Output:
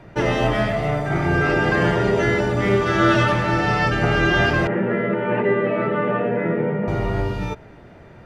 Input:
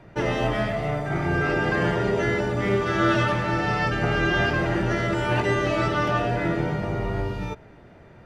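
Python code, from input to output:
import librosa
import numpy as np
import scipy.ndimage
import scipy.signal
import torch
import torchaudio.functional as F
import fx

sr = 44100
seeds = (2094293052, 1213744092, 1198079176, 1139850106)

y = fx.cabinet(x, sr, low_hz=160.0, low_slope=24, high_hz=2100.0, hz=(220.0, 310.0, 460.0, 720.0, 1100.0, 1500.0), db=(8, -9, 9, -8, -5, -5), at=(4.67, 6.88))
y = y * librosa.db_to_amplitude(4.5)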